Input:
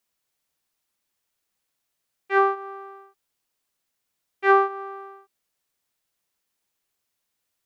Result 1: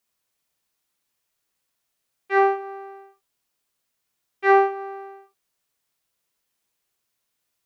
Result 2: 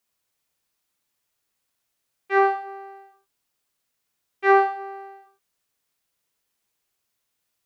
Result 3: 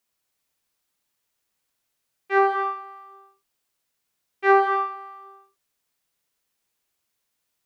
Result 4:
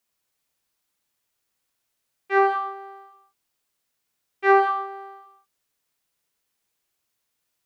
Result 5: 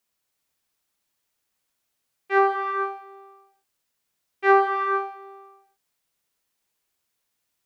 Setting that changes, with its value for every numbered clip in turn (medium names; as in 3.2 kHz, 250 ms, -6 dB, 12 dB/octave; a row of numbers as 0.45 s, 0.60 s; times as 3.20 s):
gated-style reverb, gate: 90 ms, 140 ms, 310 ms, 210 ms, 520 ms